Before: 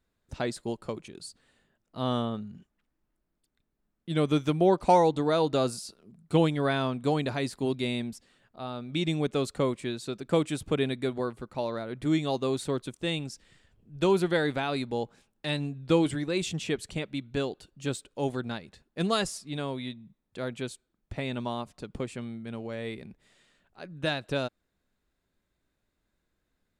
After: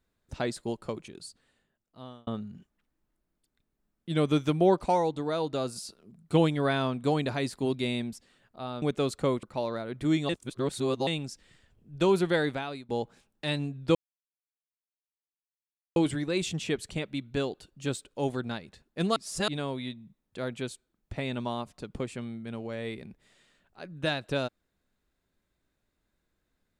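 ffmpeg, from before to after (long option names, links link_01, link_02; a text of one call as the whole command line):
ffmpeg -i in.wav -filter_complex "[0:a]asplit=12[link_01][link_02][link_03][link_04][link_05][link_06][link_07][link_08][link_09][link_10][link_11][link_12];[link_01]atrim=end=2.27,asetpts=PTS-STARTPTS,afade=type=out:start_time=1.05:duration=1.22[link_13];[link_02]atrim=start=2.27:end=4.862,asetpts=PTS-STARTPTS,afade=type=in:duration=0.004:curve=hsin[link_14];[link_03]atrim=start=4.858:end=5.762,asetpts=PTS-STARTPTS,volume=-5dB[link_15];[link_04]atrim=start=5.758:end=8.822[link_16];[link_05]atrim=start=9.178:end=9.792[link_17];[link_06]atrim=start=11.438:end=12.302[link_18];[link_07]atrim=start=12.298:end=13.082,asetpts=PTS-STARTPTS,areverse[link_19];[link_08]atrim=start=13.078:end=14.9,asetpts=PTS-STARTPTS,afade=type=out:start_time=1.342:duration=0.48:silence=0.0891251[link_20];[link_09]atrim=start=14.9:end=15.96,asetpts=PTS-STARTPTS,afade=type=in:duration=0.004:curve=hsin:silence=0.0891251,afade=type=out:start_time=1.056:duration=0.004:curve=hsin,apad=pad_dur=2.01[link_21];[link_10]atrim=start=15.96:end=19.162,asetpts=PTS-STARTPTS,afade=type=in:duration=0.004:curve=hsin[link_22];[link_11]atrim=start=19.158:end=19.482,asetpts=PTS-STARTPTS,areverse[link_23];[link_12]atrim=start=19.478[link_24];[link_13][link_14]concat=n=2:v=0:a=1[link_25];[link_25][link_15]acrossfade=duration=0.004:curve1=hsin:curve2=hsin[link_26];[link_26][link_16]acrossfade=duration=0.004:curve1=hsin:curve2=hsin[link_27];[link_27][link_17]acrossfade=duration=0.004:curve1=hsin:curve2=hsin[link_28];[link_28][link_18]acrossfade=duration=0.004:curve1=hsin:curve2=hsin[link_29];[link_29][link_19]acrossfade=duration=0.004:curve1=hsin:curve2=hsin[link_30];[link_20][link_21][link_22]concat=n=3:v=0:a=1[link_31];[link_30][link_31]acrossfade=duration=0.004:curve1=hsin:curve2=hsin[link_32];[link_32][link_23]acrossfade=duration=0.004:curve1=hsin:curve2=hsin[link_33];[link_33][link_24]acrossfade=duration=0.004:curve1=hsin:curve2=hsin" out.wav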